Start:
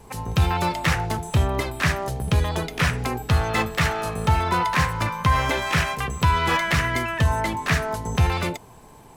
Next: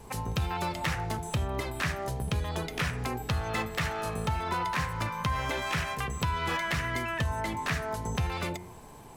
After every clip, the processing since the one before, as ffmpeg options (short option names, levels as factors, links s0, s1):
-af "bandreject=f=89.32:t=h:w=4,bandreject=f=178.64:t=h:w=4,bandreject=f=267.96:t=h:w=4,bandreject=f=357.28:t=h:w=4,bandreject=f=446.6:t=h:w=4,bandreject=f=535.92:t=h:w=4,bandreject=f=625.24:t=h:w=4,bandreject=f=714.56:t=h:w=4,bandreject=f=803.88:t=h:w=4,bandreject=f=893.2:t=h:w=4,bandreject=f=982.52:t=h:w=4,bandreject=f=1071.84:t=h:w=4,bandreject=f=1161.16:t=h:w=4,bandreject=f=1250.48:t=h:w=4,bandreject=f=1339.8:t=h:w=4,bandreject=f=1429.12:t=h:w=4,bandreject=f=1518.44:t=h:w=4,bandreject=f=1607.76:t=h:w=4,bandreject=f=1697.08:t=h:w=4,bandreject=f=1786.4:t=h:w=4,bandreject=f=1875.72:t=h:w=4,bandreject=f=1965.04:t=h:w=4,bandreject=f=2054.36:t=h:w=4,bandreject=f=2143.68:t=h:w=4,bandreject=f=2233:t=h:w=4,bandreject=f=2322.32:t=h:w=4,bandreject=f=2411.64:t=h:w=4,acompressor=threshold=0.0316:ratio=2.5,volume=0.891"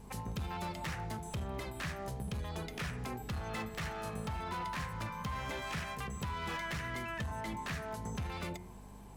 -af "asoftclip=type=hard:threshold=0.0447,aeval=exprs='val(0)+0.00562*(sin(2*PI*50*n/s)+sin(2*PI*2*50*n/s)/2+sin(2*PI*3*50*n/s)/3+sin(2*PI*4*50*n/s)/4+sin(2*PI*5*50*n/s)/5)':c=same,equalizer=f=200:w=4.1:g=6.5,volume=0.422"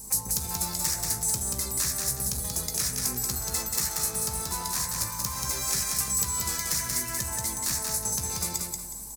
-filter_complex "[0:a]aecho=1:1:183|366|549|732:0.668|0.214|0.0684|0.0219,aexciter=amount=9.3:drive=9:freq=4700,asplit=2[s0][s1];[s1]adelay=16,volume=0.299[s2];[s0][s2]amix=inputs=2:normalize=0"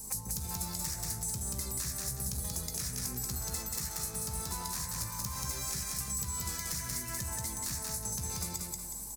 -filter_complex "[0:a]acrossover=split=220[s0][s1];[s1]acompressor=threshold=0.02:ratio=3[s2];[s0][s2]amix=inputs=2:normalize=0,volume=0.794"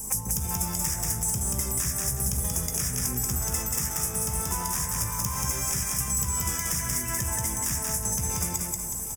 -af "asuperstop=centerf=4200:order=4:qfactor=2.4,aecho=1:1:747:0.224,volume=2.66"